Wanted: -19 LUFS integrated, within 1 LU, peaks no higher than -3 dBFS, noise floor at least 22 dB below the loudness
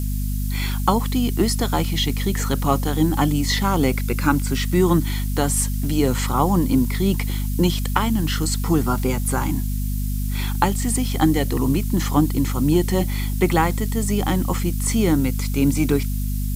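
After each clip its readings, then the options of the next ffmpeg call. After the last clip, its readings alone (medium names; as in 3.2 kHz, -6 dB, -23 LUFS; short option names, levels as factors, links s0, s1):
hum 50 Hz; highest harmonic 250 Hz; hum level -21 dBFS; noise floor -23 dBFS; noise floor target -43 dBFS; loudness -21.0 LUFS; peak level -1.5 dBFS; loudness target -19.0 LUFS
-> -af "bandreject=f=50:t=h:w=4,bandreject=f=100:t=h:w=4,bandreject=f=150:t=h:w=4,bandreject=f=200:t=h:w=4,bandreject=f=250:t=h:w=4"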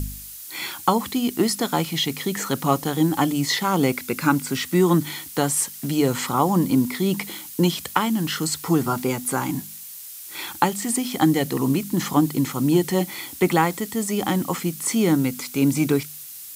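hum not found; noise floor -39 dBFS; noise floor target -45 dBFS
-> -af "afftdn=nr=6:nf=-39"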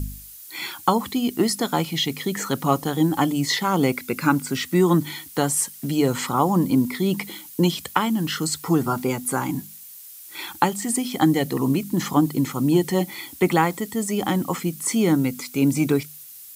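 noise floor -42 dBFS; noise floor target -45 dBFS
-> -af "afftdn=nr=6:nf=-42"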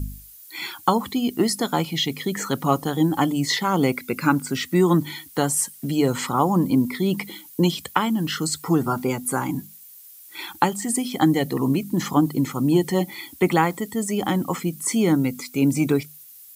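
noise floor -46 dBFS; loudness -22.5 LUFS; peak level -2.0 dBFS; loudness target -19.0 LUFS
-> -af "volume=1.5,alimiter=limit=0.708:level=0:latency=1"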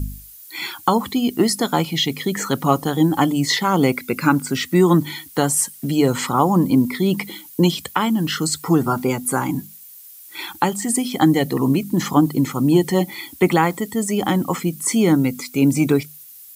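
loudness -19.0 LUFS; peak level -3.0 dBFS; noise floor -42 dBFS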